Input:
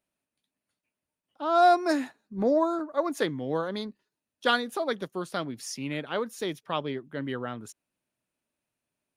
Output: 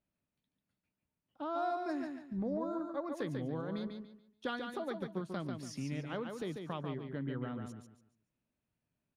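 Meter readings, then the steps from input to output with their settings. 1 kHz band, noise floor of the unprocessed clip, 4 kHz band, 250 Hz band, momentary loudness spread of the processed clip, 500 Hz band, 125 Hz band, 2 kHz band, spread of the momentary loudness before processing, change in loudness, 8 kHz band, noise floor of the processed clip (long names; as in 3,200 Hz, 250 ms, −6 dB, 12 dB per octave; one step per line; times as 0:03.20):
−14.5 dB, below −85 dBFS, −15.5 dB, −7.0 dB, 8 LU, −12.0 dB, −1.0 dB, −13.5 dB, 13 LU, −11.0 dB, −13.5 dB, below −85 dBFS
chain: bass and treble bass +11 dB, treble −3 dB
downward compressor 3 to 1, threshold −32 dBFS, peak gain reduction 12.5 dB
high-shelf EQ 5,500 Hz −8.5 dB
on a send: repeating echo 143 ms, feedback 29%, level −5.5 dB
on the sum: level −5.5 dB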